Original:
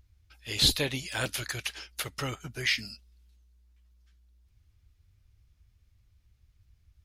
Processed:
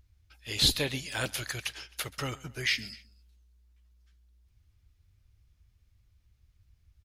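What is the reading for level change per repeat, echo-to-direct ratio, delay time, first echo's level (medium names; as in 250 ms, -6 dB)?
-5.0 dB, -21.0 dB, 131 ms, -22.0 dB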